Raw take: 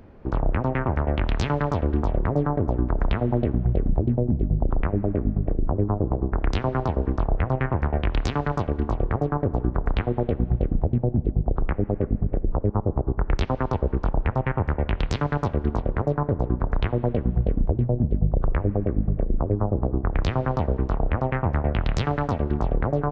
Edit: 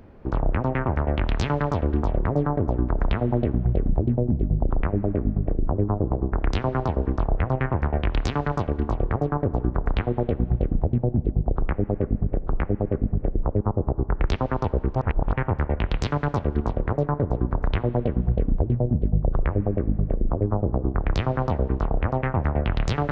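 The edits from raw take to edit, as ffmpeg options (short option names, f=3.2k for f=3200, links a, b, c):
-filter_complex "[0:a]asplit=4[a][b][c][d];[a]atrim=end=12.442[e];[b]atrim=start=11.528:end=14.042[f];[c]atrim=start=14.038:end=14.422,asetpts=PTS-STARTPTS,areverse[g];[d]atrim=start=14.418[h];[e][f]acrossfade=d=0.004:c1=hsin:c2=hsin[i];[i][g]acrossfade=d=0.004:c1=hsin:c2=hsin[j];[j][h]acrossfade=d=0.004:c1=hsin:c2=hsin"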